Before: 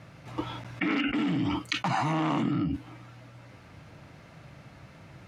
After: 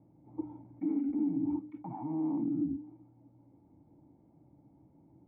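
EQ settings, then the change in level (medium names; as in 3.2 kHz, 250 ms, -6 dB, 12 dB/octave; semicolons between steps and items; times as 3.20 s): cascade formant filter u; hum notches 50/100/150/200/250/300 Hz; 0.0 dB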